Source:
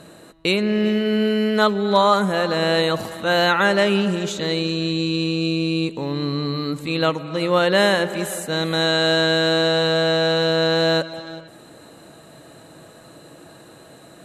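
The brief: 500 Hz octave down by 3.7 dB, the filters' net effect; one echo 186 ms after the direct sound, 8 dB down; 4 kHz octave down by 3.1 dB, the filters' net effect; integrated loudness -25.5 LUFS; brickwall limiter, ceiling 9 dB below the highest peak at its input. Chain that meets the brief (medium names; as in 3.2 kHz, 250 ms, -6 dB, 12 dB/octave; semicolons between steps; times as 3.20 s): peaking EQ 500 Hz -4.5 dB; peaking EQ 4 kHz -3.5 dB; peak limiter -16 dBFS; delay 186 ms -8 dB; trim -0.5 dB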